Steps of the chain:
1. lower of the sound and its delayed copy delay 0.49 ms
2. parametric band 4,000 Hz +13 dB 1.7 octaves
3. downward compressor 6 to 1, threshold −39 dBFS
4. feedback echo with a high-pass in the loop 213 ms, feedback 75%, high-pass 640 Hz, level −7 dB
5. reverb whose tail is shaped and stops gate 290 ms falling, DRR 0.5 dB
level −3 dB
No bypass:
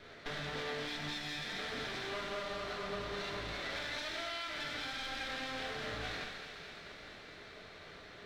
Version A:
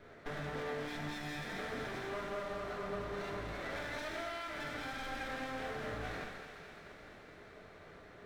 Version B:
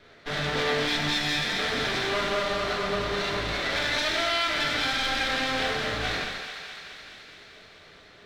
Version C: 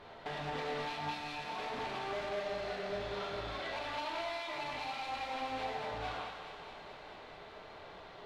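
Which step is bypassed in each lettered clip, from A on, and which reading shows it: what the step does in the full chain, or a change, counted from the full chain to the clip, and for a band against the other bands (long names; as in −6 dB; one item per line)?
2, 4 kHz band −9.5 dB
3, average gain reduction 9.5 dB
1, 1 kHz band +7.5 dB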